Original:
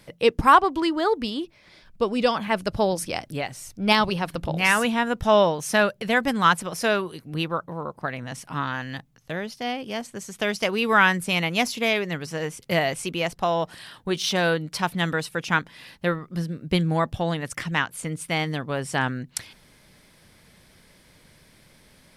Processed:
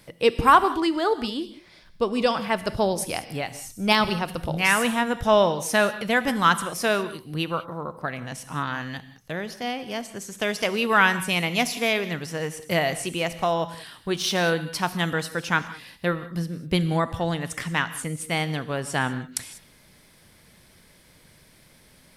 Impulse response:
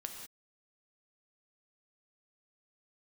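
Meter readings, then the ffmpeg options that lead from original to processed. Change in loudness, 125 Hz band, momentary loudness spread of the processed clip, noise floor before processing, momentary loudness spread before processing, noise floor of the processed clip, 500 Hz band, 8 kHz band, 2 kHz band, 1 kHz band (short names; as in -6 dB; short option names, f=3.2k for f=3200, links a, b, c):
-0.5 dB, -0.5 dB, 13 LU, -56 dBFS, 13 LU, -55 dBFS, -0.5 dB, +1.5 dB, -0.5 dB, -0.5 dB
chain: -filter_complex "[0:a]asplit=2[a][b];[1:a]atrim=start_sample=2205,highshelf=f=7.8k:g=11.5[c];[b][c]afir=irnorm=-1:irlink=0,volume=-3dB[d];[a][d]amix=inputs=2:normalize=0,volume=-4dB"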